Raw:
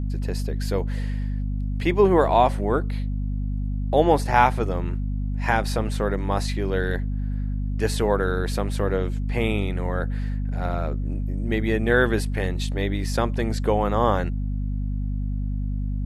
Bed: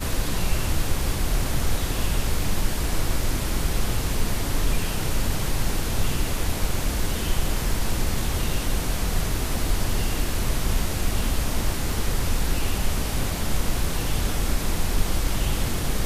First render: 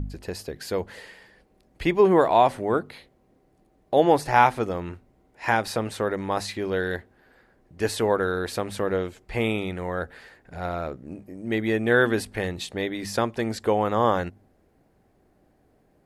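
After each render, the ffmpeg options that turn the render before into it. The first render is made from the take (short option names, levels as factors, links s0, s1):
-af "bandreject=f=50:t=h:w=4,bandreject=f=100:t=h:w=4,bandreject=f=150:t=h:w=4,bandreject=f=200:t=h:w=4,bandreject=f=250:t=h:w=4"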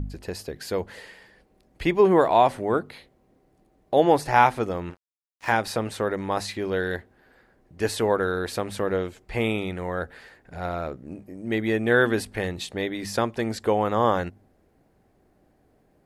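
-filter_complex "[0:a]asettb=1/sr,asplit=3[s0][s1][s2];[s0]atrim=end=4.904[s3];[s1]atrim=start=4.9:end=5.52,asetpts=PTS-STARTPTS,afade=t=in:d=0.004:c=qsin,afade=t=out:st=0.616:d=0.004:c=qsin,aeval=exprs='sgn(val(0))*max(abs(val(0))-0.0106,0)':c=same[s4];[s2]atrim=start=5.516[s5];[s3][s4]acrossfade=d=0.004:c1=hsin:c2=qsin[s6];[s6][s5]acrossfade=d=0.004:c1=qsin:c2=hsin"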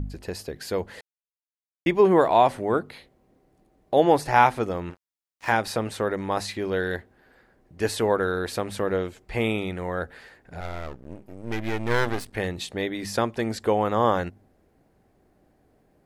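-filter_complex "[0:a]asettb=1/sr,asplit=3[s0][s1][s2];[s0]atrim=end=10.604[s3];[s1]atrim=start=10.6:end=12.33,asetpts=PTS-STARTPTS,afade=t=in:d=0.004:c=qsin,afade=t=out:st=1.726:d=0.004:c=qsin,aeval=exprs='max(val(0),0)':c=same[s4];[s2]atrim=start=12.326[s5];[s3][s4]acrossfade=d=0.004:c1=hsin:c2=qsin[s6];[s6][s5]acrossfade=d=0.004:c1=qsin:c2=hsin,asplit=3[s7][s8][s9];[s7]atrim=end=1.01,asetpts=PTS-STARTPTS,afade=t=out:st=1.006:d=0.004:c=hsin[s10];[s8]atrim=start=1.01:end=1.86,asetpts=PTS-STARTPTS,volume=0[s11];[s9]atrim=start=1.86,asetpts=PTS-STARTPTS,afade=t=in:d=0.004:c=hsin[s12];[s10][s11][s12]concat=n=3:v=0:a=1"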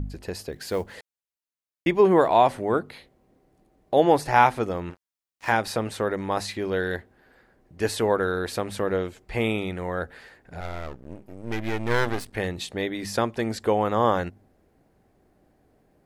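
-filter_complex "[0:a]asettb=1/sr,asplit=3[s0][s1][s2];[s0]atrim=end=0.524[s3];[s1]atrim=start=0.52:end=0.94,asetpts=PTS-STARTPTS,afade=t=in:d=0.004:c=qsin,afade=t=out:st=0.416:d=0.004:c=qsin,acrusher=bits=7:mode=log:mix=0:aa=0.000001[s4];[s2]atrim=start=0.936[s5];[s3][s4]acrossfade=d=0.004:c1=hsin:c2=qsin[s6];[s6][s5]acrossfade=d=0.004:c1=qsin:c2=hsin"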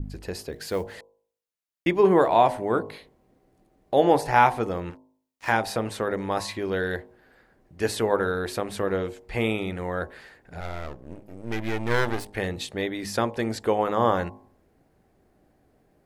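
-af "bandreject=f=52.02:t=h:w=4,bandreject=f=104.04:t=h:w=4,bandreject=f=156.06:t=h:w=4,bandreject=f=208.08:t=h:w=4,bandreject=f=260.1:t=h:w=4,bandreject=f=312.12:t=h:w=4,bandreject=f=364.14:t=h:w=4,bandreject=f=416.16:t=h:w=4,bandreject=f=468.18:t=h:w=4,bandreject=f=520.2:t=h:w=4,bandreject=f=572.22:t=h:w=4,bandreject=f=624.24:t=h:w=4,bandreject=f=676.26:t=h:w=4,bandreject=f=728.28:t=h:w=4,bandreject=f=780.3:t=h:w=4,bandreject=f=832.32:t=h:w=4,bandreject=f=884.34:t=h:w=4,bandreject=f=936.36:t=h:w=4,bandreject=f=988.38:t=h:w=4,bandreject=f=1040.4:t=h:w=4,bandreject=f=1092.42:t=h:w=4,adynamicequalizer=threshold=0.0112:dfrequency=5300:dqfactor=0.71:tfrequency=5300:tqfactor=0.71:attack=5:release=100:ratio=0.375:range=1.5:mode=cutabove:tftype=bell"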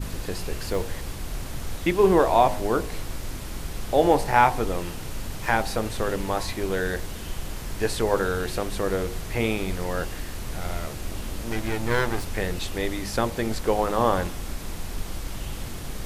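-filter_complex "[1:a]volume=0.355[s0];[0:a][s0]amix=inputs=2:normalize=0"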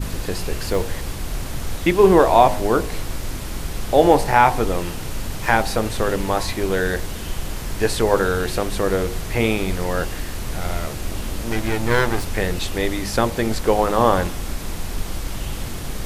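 -af "volume=1.88,alimiter=limit=0.891:level=0:latency=1"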